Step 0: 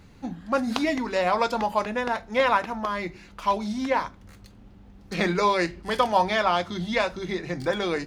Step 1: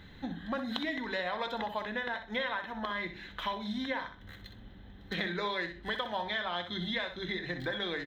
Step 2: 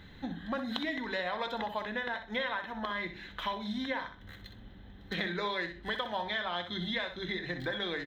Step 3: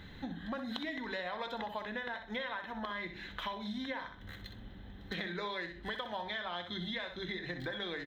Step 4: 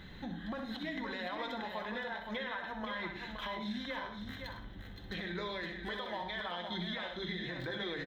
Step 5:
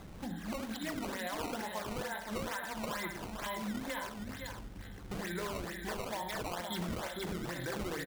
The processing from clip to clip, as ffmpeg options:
-af "superequalizer=11b=2.82:13b=3.16:14b=0.355:15b=0.355:16b=0.282,acompressor=threshold=-32dB:ratio=4,aecho=1:1:63|126|189:0.335|0.0837|0.0209,volume=-2dB"
-af anull
-af "acompressor=threshold=-42dB:ratio=2,volume=1.5dB"
-af "flanger=delay=5.3:depth=1.2:regen=-62:speed=0.56:shape=triangular,alimiter=level_in=10.5dB:limit=-24dB:level=0:latency=1:release=54,volume=-10.5dB,aecho=1:1:103|518:0.237|0.473,volume=4.5dB"
-af "acrusher=samples=15:mix=1:aa=0.000001:lfo=1:lforange=24:lforate=2.2,volume=1dB"

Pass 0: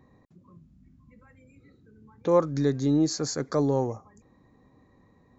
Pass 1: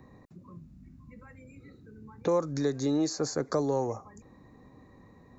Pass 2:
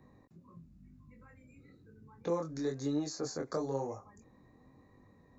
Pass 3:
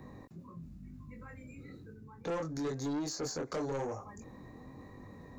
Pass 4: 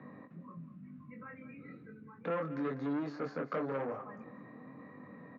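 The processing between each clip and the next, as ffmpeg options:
-filter_complex "[0:a]bandreject=f=3.2k:w=9.4,acrossover=split=380|1200|5100[a][b][c][d];[a]acompressor=threshold=-40dB:ratio=4[e];[b]acompressor=threshold=-33dB:ratio=4[f];[c]acompressor=threshold=-51dB:ratio=4[g];[d]acompressor=threshold=-45dB:ratio=4[h];[e][f][g][h]amix=inputs=4:normalize=0,volume=5dB"
-af "flanger=delay=20:depth=4.6:speed=1,volume=-4dB"
-af "areverse,acompressor=mode=upward:threshold=-46dB:ratio=2.5,areverse,asoftclip=type=tanh:threshold=-36dB,volume=4.5dB"
-af "highpass=f=160:w=0.5412,highpass=f=160:w=1.3066,equalizer=f=370:t=q:w=4:g=-9,equalizer=f=850:t=q:w=4:g=-7,equalizer=f=1.3k:t=q:w=4:g=4,lowpass=f=2.6k:w=0.5412,lowpass=f=2.6k:w=1.3066,aecho=1:1:199|398|597:0.188|0.0659|0.0231,volume=2.5dB"

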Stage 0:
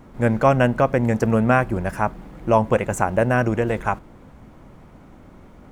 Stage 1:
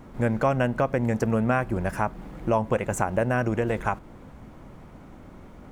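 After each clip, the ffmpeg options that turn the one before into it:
-af "acompressor=threshold=-24dB:ratio=2"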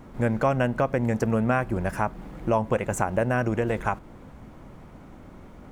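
-af anull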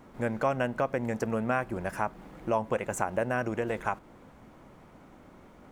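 -af "lowshelf=f=170:g=-10,volume=-3.5dB"

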